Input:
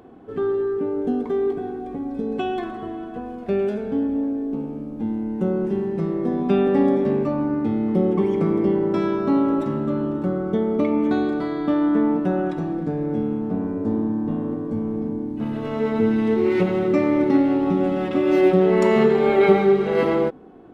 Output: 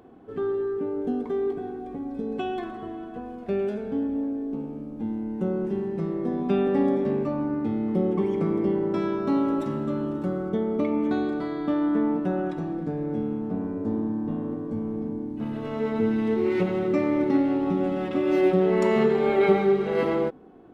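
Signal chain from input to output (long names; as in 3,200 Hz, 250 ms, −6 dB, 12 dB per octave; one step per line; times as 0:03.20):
0:09.27–0:10.49: high-shelf EQ 3,400 Hz +7.5 dB
level −4.5 dB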